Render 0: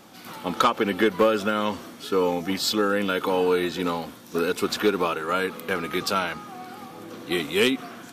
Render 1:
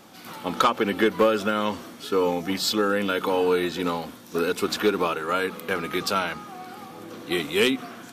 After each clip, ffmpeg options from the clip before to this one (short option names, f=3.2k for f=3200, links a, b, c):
-af "bandreject=f=61.61:t=h:w=4,bandreject=f=123.22:t=h:w=4,bandreject=f=184.83:t=h:w=4,bandreject=f=246.44:t=h:w=4,bandreject=f=308.05:t=h:w=4"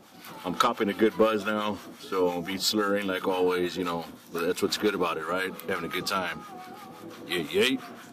-filter_complex "[0:a]acrossover=split=850[a][b];[a]aeval=exprs='val(0)*(1-0.7/2+0.7/2*cos(2*PI*5.8*n/s))':c=same[c];[b]aeval=exprs='val(0)*(1-0.7/2-0.7/2*cos(2*PI*5.8*n/s))':c=same[d];[c][d]amix=inputs=2:normalize=0"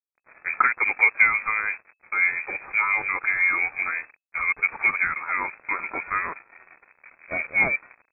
-af "aresample=11025,aeval=exprs='sgn(val(0))*max(abs(val(0))-0.01,0)':c=same,aresample=44100,lowpass=f=2.2k:t=q:w=0.5098,lowpass=f=2.2k:t=q:w=0.6013,lowpass=f=2.2k:t=q:w=0.9,lowpass=f=2.2k:t=q:w=2.563,afreqshift=-2600,volume=4.5dB"